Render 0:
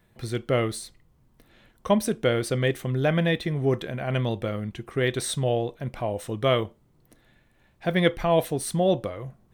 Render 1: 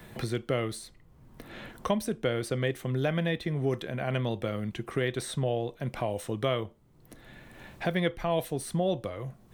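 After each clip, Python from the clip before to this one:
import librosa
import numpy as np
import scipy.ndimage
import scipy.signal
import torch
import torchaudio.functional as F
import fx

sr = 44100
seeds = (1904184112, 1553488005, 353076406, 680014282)

y = fx.band_squash(x, sr, depth_pct=70)
y = y * librosa.db_to_amplitude(-5.5)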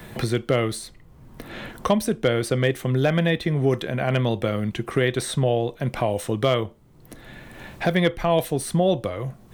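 y = np.clip(10.0 ** (17.0 / 20.0) * x, -1.0, 1.0) / 10.0 ** (17.0 / 20.0)
y = y * librosa.db_to_amplitude(8.0)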